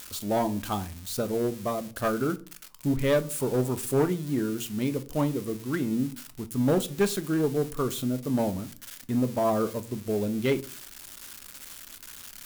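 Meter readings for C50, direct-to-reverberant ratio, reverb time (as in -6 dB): 20.0 dB, 10.0 dB, 0.40 s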